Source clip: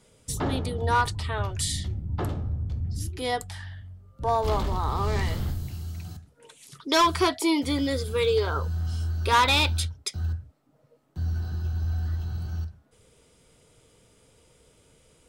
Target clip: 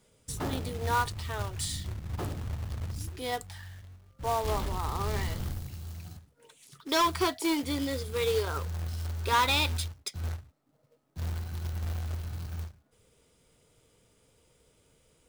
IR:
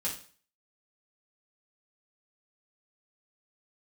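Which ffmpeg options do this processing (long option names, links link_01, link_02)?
-af "acrusher=bits=3:mode=log:mix=0:aa=0.000001,aeval=exprs='0.158*(cos(1*acos(clip(val(0)/0.158,-1,1)))-cos(1*PI/2))+0.00708*(cos(3*acos(clip(val(0)/0.158,-1,1)))-cos(3*PI/2))':channel_layout=same,volume=-5dB"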